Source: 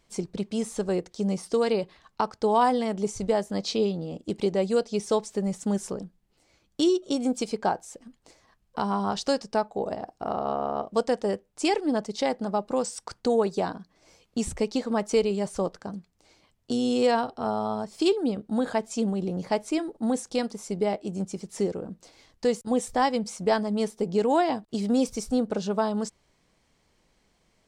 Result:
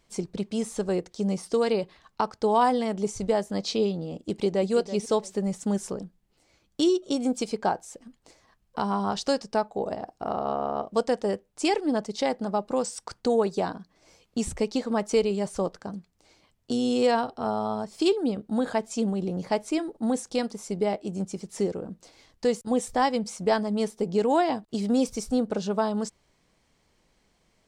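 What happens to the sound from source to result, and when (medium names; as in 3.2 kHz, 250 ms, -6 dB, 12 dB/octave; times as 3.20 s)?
4.21–4.72 s: echo throw 330 ms, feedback 20%, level -12.5 dB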